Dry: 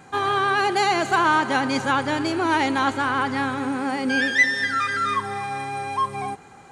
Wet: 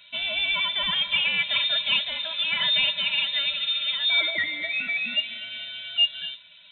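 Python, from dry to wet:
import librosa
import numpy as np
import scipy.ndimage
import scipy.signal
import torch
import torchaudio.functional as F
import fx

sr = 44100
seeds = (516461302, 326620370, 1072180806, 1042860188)

y = fx.stiff_resonator(x, sr, f0_hz=79.0, decay_s=0.25, stiffness=0.03)
y = fx.freq_invert(y, sr, carrier_hz=3900)
y = F.gain(torch.from_numpy(y), 4.0).numpy()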